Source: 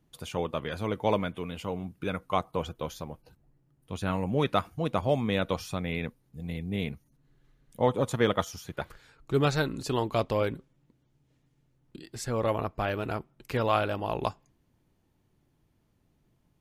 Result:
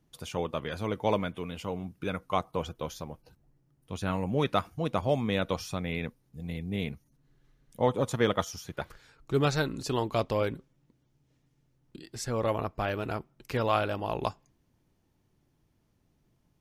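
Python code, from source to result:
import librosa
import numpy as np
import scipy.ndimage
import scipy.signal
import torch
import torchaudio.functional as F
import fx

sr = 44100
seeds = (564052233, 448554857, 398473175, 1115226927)

y = fx.peak_eq(x, sr, hz=5600.0, db=4.0, octaves=0.43)
y = y * 10.0 ** (-1.0 / 20.0)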